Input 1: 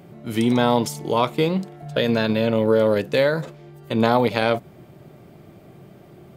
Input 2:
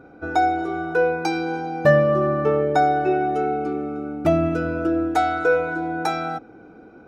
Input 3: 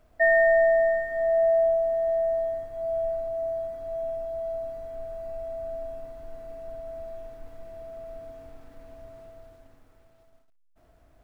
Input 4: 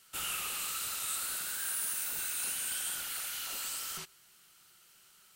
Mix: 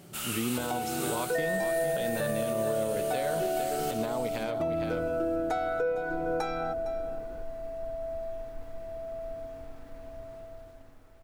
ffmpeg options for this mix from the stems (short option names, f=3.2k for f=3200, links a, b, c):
-filter_complex "[0:a]acompressor=threshold=-23dB:ratio=2,volume=-6.5dB,asplit=2[a][b];[b]volume=-9.5dB[c];[1:a]equalizer=f=500:t=o:w=0.26:g=7,adelay=350,volume=-6dB,asplit=2[d][e];[e]volume=-19dB[f];[2:a]adelay=1150,volume=2.5dB[g];[3:a]volume=1dB,asplit=2[h][i];[i]volume=-8.5dB[j];[d][g][h]amix=inputs=3:normalize=0,acompressor=threshold=-28dB:ratio=2.5,volume=0dB[k];[c][f][j]amix=inputs=3:normalize=0,aecho=0:1:458:1[l];[a][k][l]amix=inputs=3:normalize=0,alimiter=limit=-20dB:level=0:latency=1:release=244"